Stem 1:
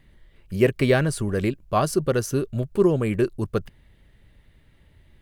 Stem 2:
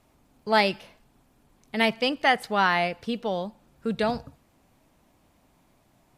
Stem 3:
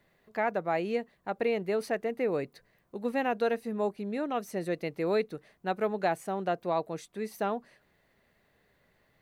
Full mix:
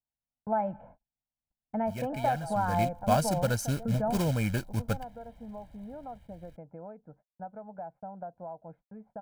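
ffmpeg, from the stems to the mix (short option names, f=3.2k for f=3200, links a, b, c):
-filter_complex "[0:a]acrusher=bits=4:mode=log:mix=0:aa=0.000001,adelay=1350,volume=-6.5dB,afade=t=in:st=2.52:d=0.37:silence=0.251189[a];[1:a]volume=-1.5dB[b];[2:a]acompressor=threshold=-33dB:ratio=12,adelay=1750,volume=-6.5dB[c];[b][c]amix=inputs=2:normalize=0,lowpass=f=1.1k:w=0.5412,lowpass=f=1.1k:w=1.3066,acompressor=threshold=-29dB:ratio=6,volume=0dB[d];[a][d]amix=inputs=2:normalize=0,agate=range=-40dB:threshold=-56dB:ratio=16:detection=peak,aecho=1:1:1.3:0.86"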